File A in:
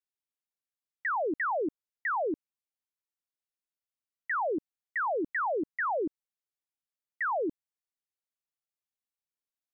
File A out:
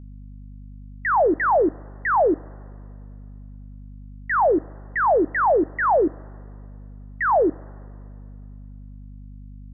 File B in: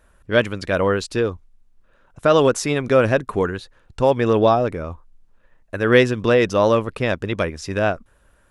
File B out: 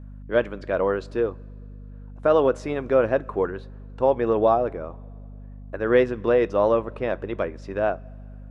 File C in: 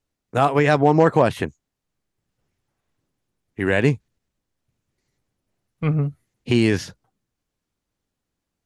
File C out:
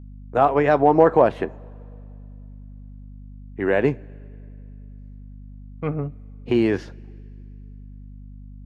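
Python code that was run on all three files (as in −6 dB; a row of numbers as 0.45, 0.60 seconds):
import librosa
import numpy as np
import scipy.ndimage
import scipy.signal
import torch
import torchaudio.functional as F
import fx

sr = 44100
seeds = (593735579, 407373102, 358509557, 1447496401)

y = fx.bandpass_q(x, sr, hz=600.0, q=0.7)
y = fx.rev_double_slope(y, sr, seeds[0], early_s=0.2, late_s=2.6, knee_db=-21, drr_db=16.0)
y = fx.add_hum(y, sr, base_hz=50, snr_db=16)
y = y * 10.0 ** (-24 / 20.0) / np.sqrt(np.mean(np.square(y)))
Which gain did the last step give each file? +13.5, −2.5, +2.0 decibels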